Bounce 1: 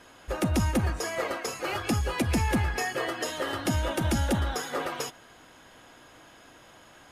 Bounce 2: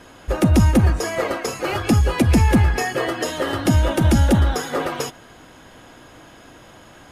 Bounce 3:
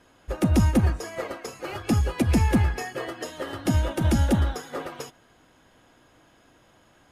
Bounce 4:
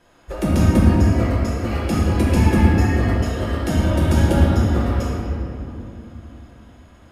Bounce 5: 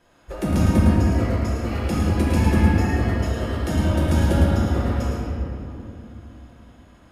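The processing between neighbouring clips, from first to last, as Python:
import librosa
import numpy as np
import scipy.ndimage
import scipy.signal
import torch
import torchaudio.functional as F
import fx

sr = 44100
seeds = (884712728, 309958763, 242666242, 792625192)

y1 = fx.low_shelf(x, sr, hz=460.0, db=7.0)
y1 = y1 * 10.0 ** (5.5 / 20.0)
y2 = fx.upward_expand(y1, sr, threshold_db=-28.0, expansion=1.5)
y2 = y2 * 10.0 ** (-4.5 / 20.0)
y3 = fx.room_shoebox(y2, sr, seeds[0], volume_m3=130.0, walls='hard', distance_m=0.81)
y3 = y3 * 10.0 ** (-1.0 / 20.0)
y4 = y3 + 10.0 ** (-6.0 / 20.0) * np.pad(y3, (int(109 * sr / 1000.0), 0))[:len(y3)]
y4 = y4 * 10.0 ** (-3.5 / 20.0)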